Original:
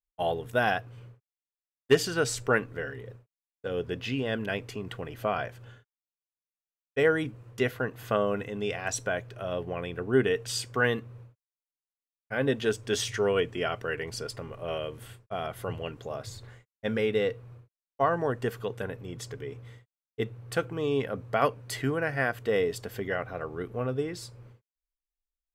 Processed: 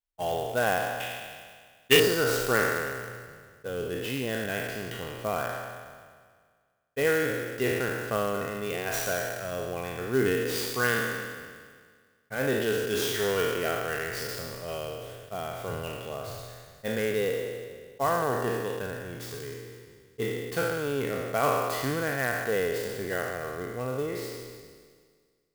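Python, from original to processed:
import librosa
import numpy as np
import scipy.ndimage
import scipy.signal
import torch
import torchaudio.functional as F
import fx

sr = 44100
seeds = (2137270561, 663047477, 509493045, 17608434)

y = fx.spec_trails(x, sr, decay_s=1.76)
y = fx.band_shelf(y, sr, hz=2800.0, db=13.0, octaves=1.2, at=(1.0, 2.0))
y = fx.clock_jitter(y, sr, seeds[0], jitter_ms=0.029)
y = y * librosa.db_to_amplitude(-3.5)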